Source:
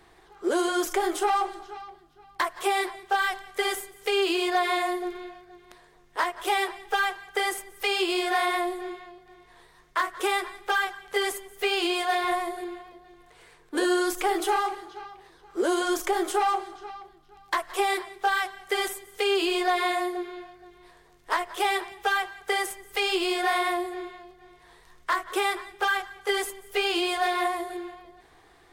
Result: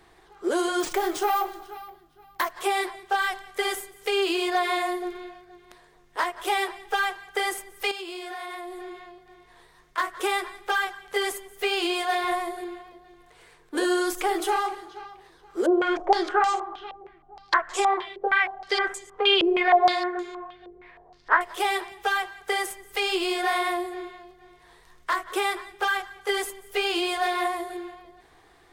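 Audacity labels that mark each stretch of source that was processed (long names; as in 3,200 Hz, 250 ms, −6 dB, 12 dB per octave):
0.800000	2.510000	bad sample-rate conversion rate divided by 3×, down none, up hold
7.910000	9.980000	downward compressor 4 to 1, threshold −35 dBFS
15.660000	21.410000	low-pass on a step sequencer 6.4 Hz 500–7,000 Hz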